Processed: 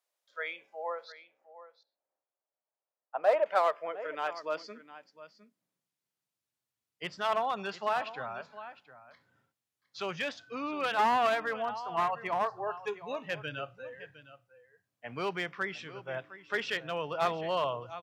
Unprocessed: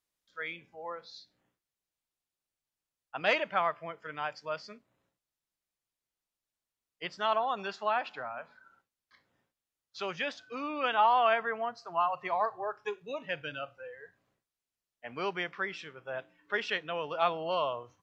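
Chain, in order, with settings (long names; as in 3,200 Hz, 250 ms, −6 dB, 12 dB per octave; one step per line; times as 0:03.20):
0:01.12–0:03.46: low-pass filter 1,200 Hz 12 dB per octave
single-tap delay 709 ms −15.5 dB
asymmetric clip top −26 dBFS
high-pass filter sweep 590 Hz → 110 Hz, 0:03.38–0:06.55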